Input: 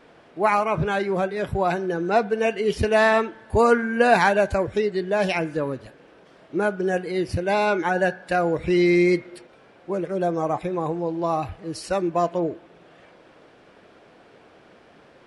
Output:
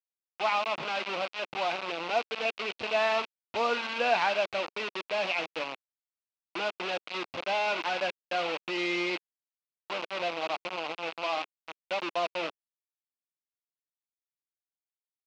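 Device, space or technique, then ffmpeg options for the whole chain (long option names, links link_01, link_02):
hand-held game console: -af "acrusher=bits=3:mix=0:aa=0.000001,highpass=410,equalizer=frequency=410:width_type=q:width=4:gain=-8,equalizer=frequency=1700:width_type=q:width=4:gain=-7,equalizer=frequency=2600:width_type=q:width=4:gain=8,lowpass=frequency=4500:width=0.5412,lowpass=frequency=4500:width=1.3066,volume=-7.5dB"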